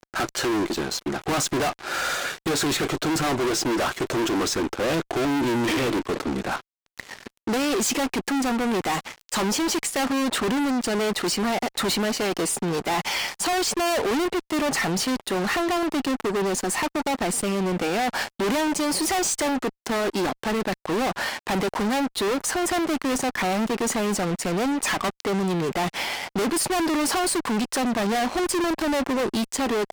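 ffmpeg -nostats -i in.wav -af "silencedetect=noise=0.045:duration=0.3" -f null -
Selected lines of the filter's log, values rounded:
silence_start: 6.59
silence_end: 6.99 | silence_duration: 0.40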